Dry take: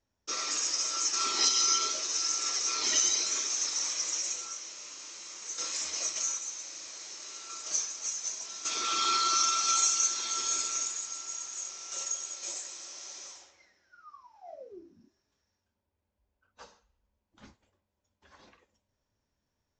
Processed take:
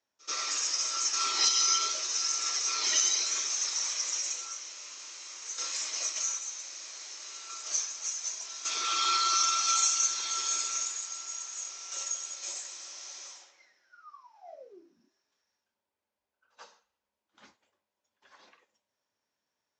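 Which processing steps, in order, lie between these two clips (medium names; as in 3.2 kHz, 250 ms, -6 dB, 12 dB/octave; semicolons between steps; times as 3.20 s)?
frequency weighting A; on a send: reverse echo 85 ms -24 dB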